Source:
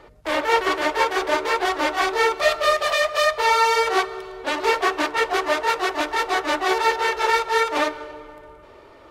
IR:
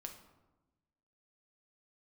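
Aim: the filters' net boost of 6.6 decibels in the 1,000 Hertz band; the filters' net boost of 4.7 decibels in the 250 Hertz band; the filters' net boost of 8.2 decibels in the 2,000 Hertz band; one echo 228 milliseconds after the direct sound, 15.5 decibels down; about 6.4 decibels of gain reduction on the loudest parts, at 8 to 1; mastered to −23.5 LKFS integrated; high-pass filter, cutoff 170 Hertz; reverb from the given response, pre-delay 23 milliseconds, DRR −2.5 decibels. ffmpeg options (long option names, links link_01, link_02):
-filter_complex "[0:a]highpass=170,equalizer=frequency=250:width_type=o:gain=7,equalizer=frequency=1000:width_type=o:gain=5.5,equalizer=frequency=2000:width_type=o:gain=8,acompressor=threshold=-14dB:ratio=8,aecho=1:1:228:0.168,asplit=2[link_01][link_02];[1:a]atrim=start_sample=2205,adelay=23[link_03];[link_02][link_03]afir=irnorm=-1:irlink=0,volume=6.5dB[link_04];[link_01][link_04]amix=inputs=2:normalize=0,volume=-10dB"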